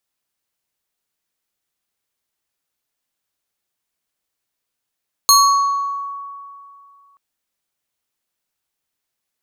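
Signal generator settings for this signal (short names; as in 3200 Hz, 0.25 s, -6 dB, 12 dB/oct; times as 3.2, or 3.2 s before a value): FM tone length 1.88 s, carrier 1120 Hz, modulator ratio 4.8, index 1.6, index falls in 1.04 s exponential, decay 2.48 s, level -6 dB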